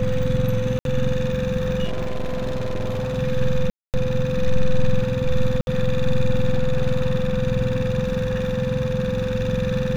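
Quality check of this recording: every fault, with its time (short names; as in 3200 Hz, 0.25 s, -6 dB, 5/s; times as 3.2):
tone 510 Hz -24 dBFS
0.79–0.85 gap 62 ms
1.84–3.19 clipped -21 dBFS
3.7–3.94 gap 0.238 s
5.61–5.67 gap 61 ms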